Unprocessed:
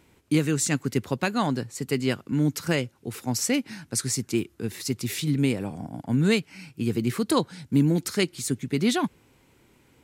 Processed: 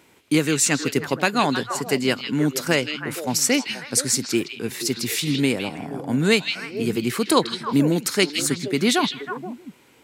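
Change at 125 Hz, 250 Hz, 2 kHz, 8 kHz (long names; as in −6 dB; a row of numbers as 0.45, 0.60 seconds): −1.5, +2.5, +8.0, +7.0 decibels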